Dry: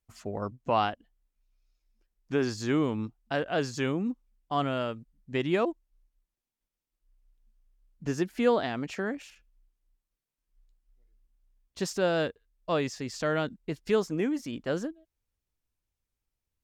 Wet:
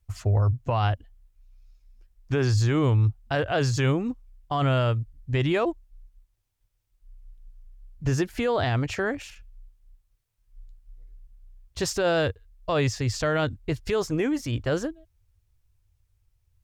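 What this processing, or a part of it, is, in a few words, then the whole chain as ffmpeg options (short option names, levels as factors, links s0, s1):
car stereo with a boomy subwoofer: -af "lowshelf=f=140:t=q:w=3:g=11,alimiter=limit=0.0708:level=0:latency=1:release=14,volume=2.24"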